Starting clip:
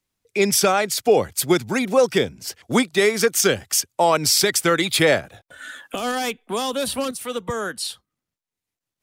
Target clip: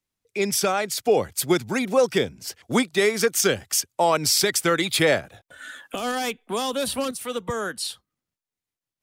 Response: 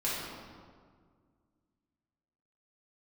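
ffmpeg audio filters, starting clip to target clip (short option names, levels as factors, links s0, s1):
-af "dynaudnorm=f=380:g=5:m=1.58,volume=0.531"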